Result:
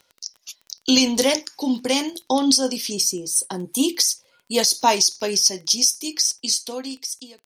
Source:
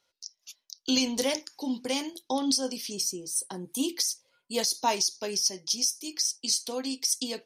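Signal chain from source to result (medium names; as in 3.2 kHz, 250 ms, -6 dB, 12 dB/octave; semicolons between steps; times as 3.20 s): fade out at the end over 1.42 s; crackle 24 per s -44 dBFS; trim +9 dB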